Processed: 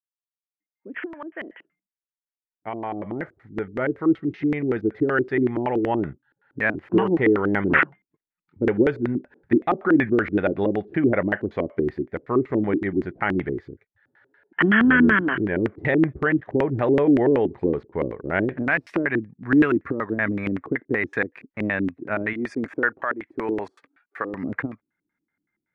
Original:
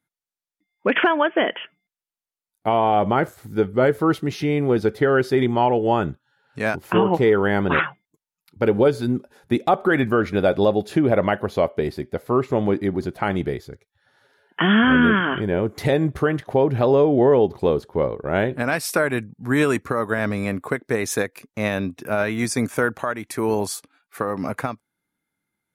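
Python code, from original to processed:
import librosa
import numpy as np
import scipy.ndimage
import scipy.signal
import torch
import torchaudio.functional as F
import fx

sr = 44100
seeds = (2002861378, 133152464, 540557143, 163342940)

y = fx.fade_in_head(x, sr, length_s=6.58)
y = fx.bass_treble(y, sr, bass_db=-11, treble_db=3, at=(22.33, 24.34))
y = fx.filter_lfo_lowpass(y, sr, shape='square', hz=5.3, low_hz=320.0, high_hz=1900.0, q=3.9)
y = fx.dynamic_eq(y, sr, hz=2900.0, q=2.7, threshold_db=-39.0, ratio=4.0, max_db=4)
y = y * librosa.db_to_amplitude(-5.0)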